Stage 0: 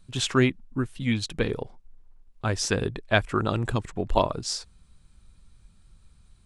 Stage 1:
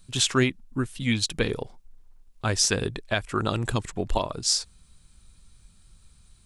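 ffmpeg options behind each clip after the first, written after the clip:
-af "highshelf=f=3300:g=10,alimiter=limit=0.316:level=0:latency=1:release=321"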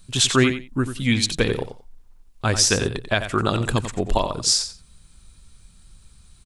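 -af "aecho=1:1:90|180:0.316|0.0538,volume=1.68"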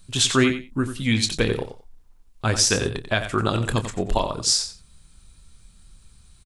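-filter_complex "[0:a]asplit=2[s0][s1];[s1]adelay=27,volume=0.266[s2];[s0][s2]amix=inputs=2:normalize=0,volume=0.841"

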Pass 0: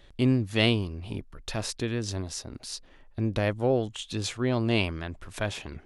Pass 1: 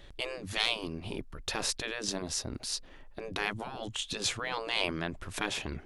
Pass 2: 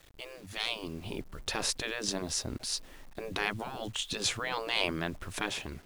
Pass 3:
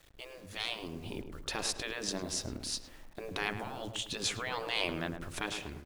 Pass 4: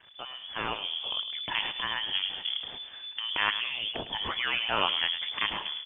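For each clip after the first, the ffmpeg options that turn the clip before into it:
-af "acontrast=71,afftfilt=real='re*lt(hypot(re,im),0.251)':imag='im*lt(hypot(re,im),0.251)':win_size=1024:overlap=0.75,volume=0.631"
-af "dynaudnorm=f=290:g=5:m=3.16,acrusher=bits=7:mix=0:aa=0.000001,volume=0.355"
-filter_complex "[0:a]asplit=2[s0][s1];[s1]adelay=106,lowpass=f=1300:p=1,volume=0.447,asplit=2[s2][s3];[s3]adelay=106,lowpass=f=1300:p=1,volume=0.5,asplit=2[s4][s5];[s5]adelay=106,lowpass=f=1300:p=1,volume=0.5,asplit=2[s6][s7];[s7]adelay=106,lowpass=f=1300:p=1,volume=0.5,asplit=2[s8][s9];[s9]adelay=106,lowpass=f=1300:p=1,volume=0.5,asplit=2[s10][s11];[s11]adelay=106,lowpass=f=1300:p=1,volume=0.5[s12];[s0][s2][s4][s6][s8][s10][s12]amix=inputs=7:normalize=0,volume=0.708"
-af "lowpass=f=3000:t=q:w=0.5098,lowpass=f=3000:t=q:w=0.6013,lowpass=f=3000:t=q:w=0.9,lowpass=f=3000:t=q:w=2.563,afreqshift=-3500,volume=2.51" -ar 48000 -c:a libopus -b:a 24k

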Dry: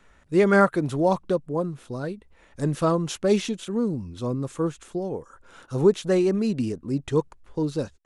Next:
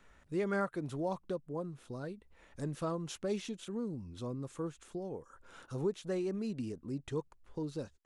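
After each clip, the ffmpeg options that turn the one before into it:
-af "acompressor=threshold=0.00708:ratio=1.5,volume=0.531"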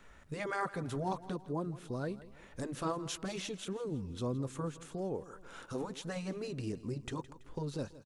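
-af "afftfilt=real='re*lt(hypot(re,im),0.112)':imag='im*lt(hypot(re,im),0.112)':win_size=1024:overlap=0.75,aecho=1:1:165|330|495|660:0.141|0.065|0.0299|0.0137,volume=1.68"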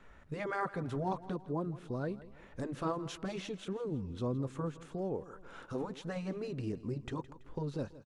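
-af "lowpass=f=2300:p=1,volume=1.12"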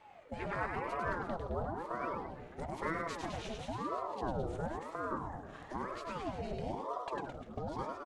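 -filter_complex "[0:a]asplit=2[s0][s1];[s1]aecho=0:1:100|215|347.2|499.3|674.2:0.631|0.398|0.251|0.158|0.1[s2];[s0][s2]amix=inputs=2:normalize=0,aeval=exprs='val(0)*sin(2*PI*540*n/s+540*0.6/1*sin(2*PI*1*n/s))':c=same"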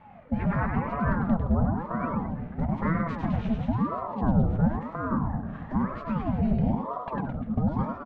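-af "lowpass=1800,lowshelf=f=280:t=q:w=3:g=8,volume=2.37"

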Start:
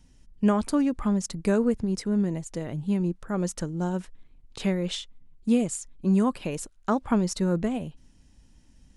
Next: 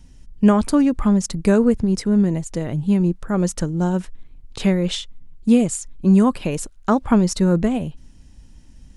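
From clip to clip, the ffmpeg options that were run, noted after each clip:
-af "lowshelf=f=140:g=5.5,volume=2.11"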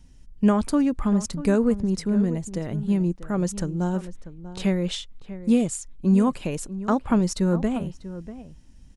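-filter_complex "[0:a]asplit=2[s0][s1];[s1]adelay=641.4,volume=0.2,highshelf=f=4000:g=-14.4[s2];[s0][s2]amix=inputs=2:normalize=0,volume=0.562"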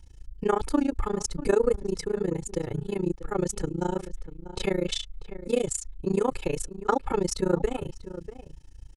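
-af "aecho=1:1:2.3:0.89,tremolo=f=28:d=0.974,volume=1.19"

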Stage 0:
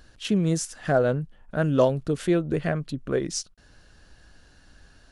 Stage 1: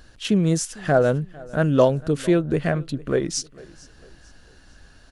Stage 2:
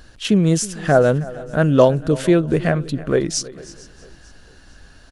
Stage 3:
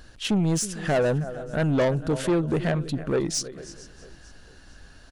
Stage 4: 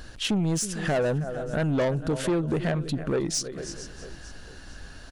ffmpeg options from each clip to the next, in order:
-af "aecho=1:1:451|902|1353:0.075|0.03|0.012,volume=1.5"
-af "aecho=1:1:319|638:0.112|0.0269,volume=1.58"
-af "asoftclip=type=tanh:threshold=0.178,volume=0.708"
-af "acompressor=threshold=0.0178:ratio=2,volume=1.88"

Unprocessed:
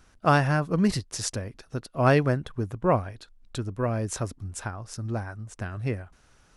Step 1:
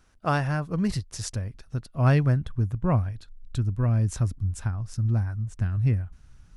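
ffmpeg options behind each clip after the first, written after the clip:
-af "asubboost=boost=7.5:cutoff=170,volume=0.596"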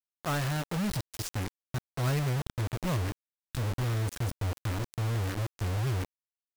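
-af "asoftclip=type=tanh:threshold=0.106,acrusher=bits=4:mix=0:aa=0.000001,volume=0.631"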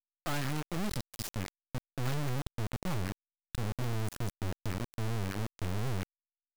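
-af "aeval=exprs='max(val(0),0)':c=same"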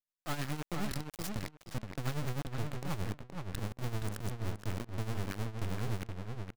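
-filter_complex "[0:a]tremolo=f=9.6:d=0.69,asplit=2[s0][s1];[s1]adelay=472,lowpass=f=3500:p=1,volume=0.596,asplit=2[s2][s3];[s3]adelay=472,lowpass=f=3500:p=1,volume=0.2,asplit=2[s4][s5];[s5]adelay=472,lowpass=f=3500:p=1,volume=0.2[s6];[s0][s2][s4][s6]amix=inputs=4:normalize=0"

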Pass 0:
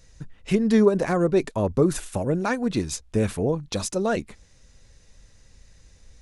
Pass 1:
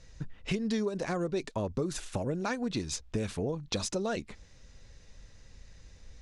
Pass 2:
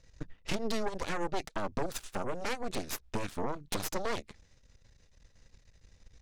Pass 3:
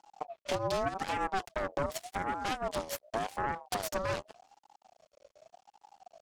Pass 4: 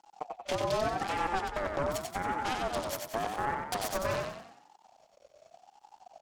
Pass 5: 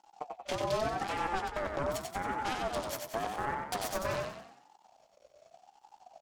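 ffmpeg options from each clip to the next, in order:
-filter_complex "[0:a]lowpass=5900,acrossover=split=3300[s0][s1];[s0]acompressor=threshold=0.0316:ratio=5[s2];[s2][s1]amix=inputs=2:normalize=0"
-af "aeval=exprs='0.119*(cos(1*acos(clip(val(0)/0.119,-1,1)))-cos(1*PI/2))+0.00596*(cos(3*acos(clip(val(0)/0.119,-1,1)))-cos(3*PI/2))+0.0596*(cos(6*acos(clip(val(0)/0.119,-1,1)))-cos(6*PI/2))':c=same,volume=0.473"
-af "aeval=exprs='max(val(0),0)':c=same,aeval=exprs='val(0)*sin(2*PI*700*n/s+700*0.2/0.86*sin(2*PI*0.86*n/s))':c=same,volume=1.26"
-filter_complex "[0:a]asplit=7[s0][s1][s2][s3][s4][s5][s6];[s1]adelay=92,afreqshift=31,volume=0.631[s7];[s2]adelay=184,afreqshift=62,volume=0.285[s8];[s3]adelay=276,afreqshift=93,volume=0.127[s9];[s4]adelay=368,afreqshift=124,volume=0.0575[s10];[s5]adelay=460,afreqshift=155,volume=0.026[s11];[s6]adelay=552,afreqshift=186,volume=0.0116[s12];[s0][s7][s8][s9][s10][s11][s12]amix=inputs=7:normalize=0"
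-filter_complex "[0:a]asplit=2[s0][s1];[s1]adelay=15,volume=0.251[s2];[s0][s2]amix=inputs=2:normalize=0,volume=0.794"

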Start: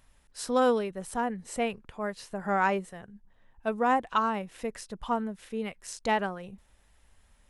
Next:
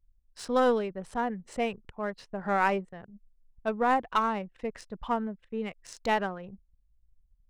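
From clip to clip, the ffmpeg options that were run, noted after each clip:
-af "anlmdn=0.0158,aeval=exprs='0.224*(cos(1*acos(clip(val(0)/0.224,-1,1)))-cos(1*PI/2))+0.0251*(cos(2*acos(clip(val(0)/0.224,-1,1)))-cos(2*PI/2))':c=same,adynamicsmooth=sensitivity=7.5:basefreq=4000"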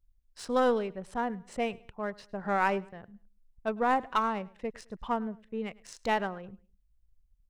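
-af "aecho=1:1:105|210:0.0708|0.0248,volume=0.841"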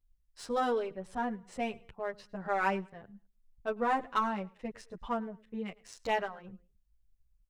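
-filter_complex "[0:a]asplit=2[s0][s1];[s1]adelay=9.4,afreqshift=-2.4[s2];[s0][s2]amix=inputs=2:normalize=1"

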